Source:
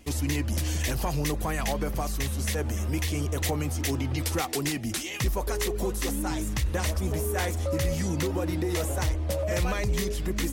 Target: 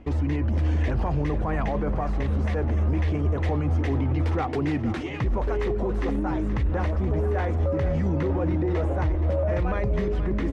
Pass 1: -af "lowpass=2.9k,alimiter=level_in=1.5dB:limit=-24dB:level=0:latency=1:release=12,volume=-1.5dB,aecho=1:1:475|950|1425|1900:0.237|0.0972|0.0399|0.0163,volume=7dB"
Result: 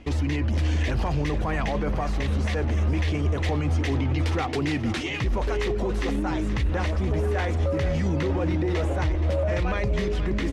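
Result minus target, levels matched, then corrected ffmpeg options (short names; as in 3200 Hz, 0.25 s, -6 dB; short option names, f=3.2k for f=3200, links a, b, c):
4000 Hz band +10.0 dB
-af "lowpass=1.4k,alimiter=level_in=1.5dB:limit=-24dB:level=0:latency=1:release=12,volume=-1.5dB,aecho=1:1:475|950|1425|1900:0.237|0.0972|0.0399|0.0163,volume=7dB"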